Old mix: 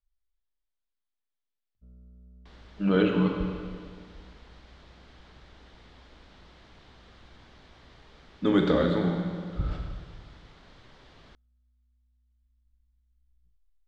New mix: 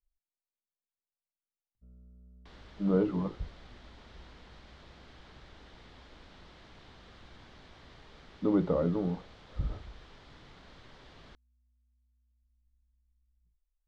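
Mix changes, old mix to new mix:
speech: add Savitzky-Golay filter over 65 samples; first sound -3.5 dB; reverb: off

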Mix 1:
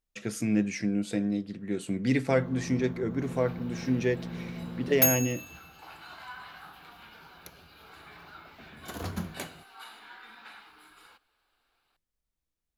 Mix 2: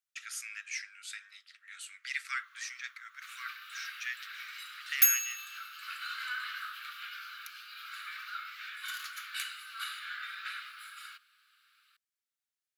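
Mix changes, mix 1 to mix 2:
second sound +9.0 dB; master: add steep high-pass 1.2 kHz 96 dB/octave

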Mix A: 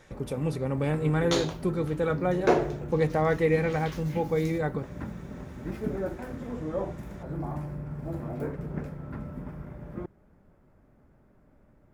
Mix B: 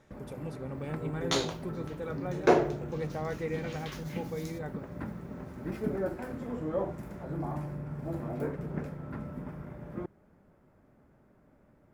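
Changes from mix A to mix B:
speech -11.0 dB; first sound: add bass shelf 62 Hz -12 dB

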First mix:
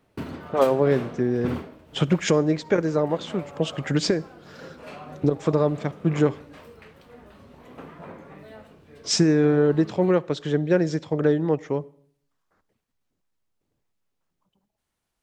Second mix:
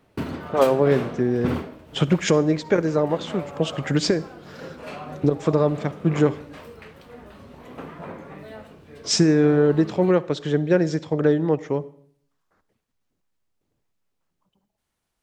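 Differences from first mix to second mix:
speech: send +6.0 dB; background +4.5 dB

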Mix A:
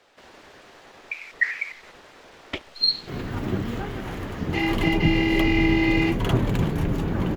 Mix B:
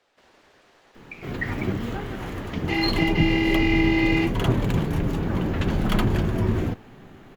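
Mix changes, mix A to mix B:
speech -8.5 dB; background: entry -1.85 s

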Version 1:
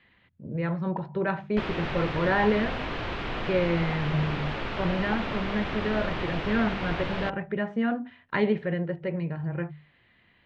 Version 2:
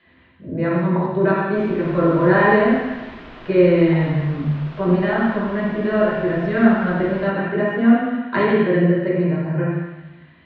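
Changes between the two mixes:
second sound -10.0 dB; reverb: on, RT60 1.1 s

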